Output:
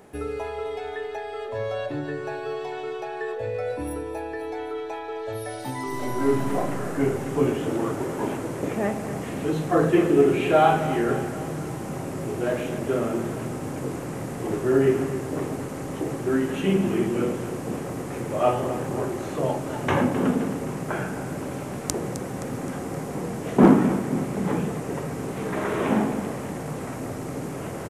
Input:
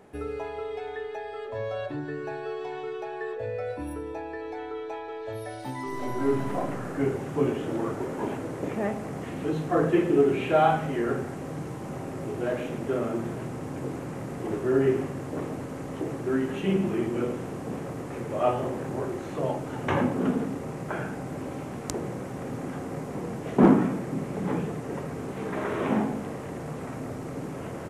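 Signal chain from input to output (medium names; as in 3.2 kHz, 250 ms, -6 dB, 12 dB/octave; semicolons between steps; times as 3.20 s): treble shelf 5.8 kHz +8 dB; on a send: feedback delay 261 ms, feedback 53%, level -12.5 dB; on the sum: trim +3 dB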